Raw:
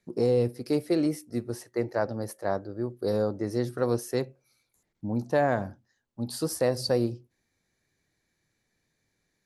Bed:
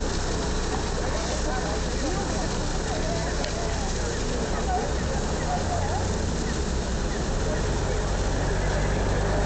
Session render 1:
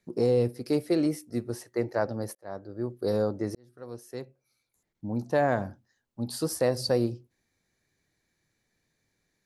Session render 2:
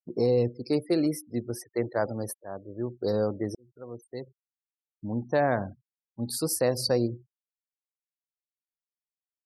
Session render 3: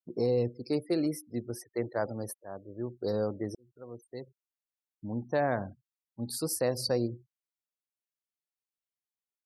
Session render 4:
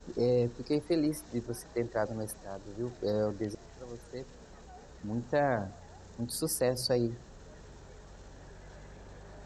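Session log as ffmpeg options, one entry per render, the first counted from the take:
-filter_complex "[0:a]asplit=3[a][b][c];[a]atrim=end=2.35,asetpts=PTS-STARTPTS,afade=t=out:st=2.346:d=0.004:c=hsin[d];[b]atrim=start=2.35:end=3.55,asetpts=PTS-STARTPTS,afade=t=in:d=0.53,afade=t=out:st=1.196:d=0.004:c=hsin[e];[c]atrim=start=3.55,asetpts=PTS-STARTPTS,afade=t=in:d=1.95[f];[d][e][f]concat=n=3:v=0:a=1"
-af "afftfilt=real='re*gte(hypot(re,im),0.00708)':imag='im*gte(hypot(re,im),0.00708)':win_size=1024:overlap=0.75,highshelf=f=6.7k:g=8.5"
-af "volume=-4dB"
-filter_complex "[1:a]volume=-25.5dB[a];[0:a][a]amix=inputs=2:normalize=0"

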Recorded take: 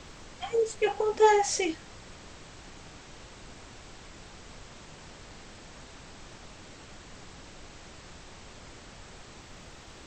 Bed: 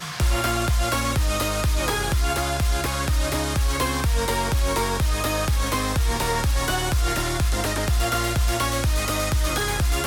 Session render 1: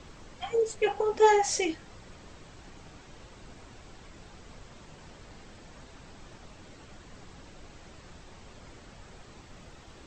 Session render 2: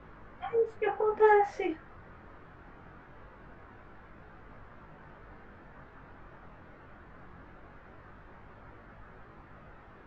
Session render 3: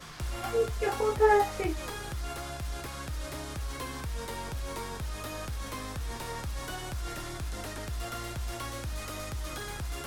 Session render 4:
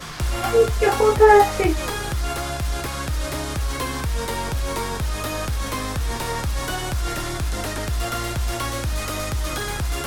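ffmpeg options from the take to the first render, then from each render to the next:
-af "afftdn=nr=6:nf=-50"
-af "flanger=delay=18.5:depth=4.9:speed=0.22,lowpass=f=1.5k:t=q:w=2"
-filter_complex "[1:a]volume=-14.5dB[a];[0:a][a]amix=inputs=2:normalize=0"
-af "volume=11.5dB,alimiter=limit=-3dB:level=0:latency=1"

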